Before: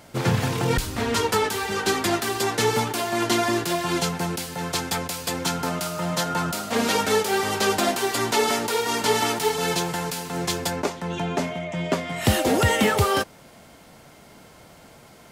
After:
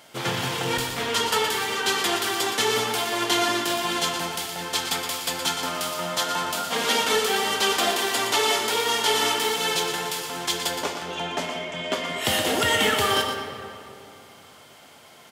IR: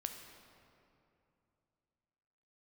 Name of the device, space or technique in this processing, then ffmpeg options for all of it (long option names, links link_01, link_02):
PA in a hall: -filter_complex "[0:a]highpass=frequency=140:poles=1,equalizer=frequency=3200:width_type=o:width=0.27:gain=7,aecho=1:1:118:0.376[link_01];[1:a]atrim=start_sample=2205[link_02];[link_01][link_02]afir=irnorm=-1:irlink=0,lowshelf=frequency=400:gain=-10,volume=2.5dB"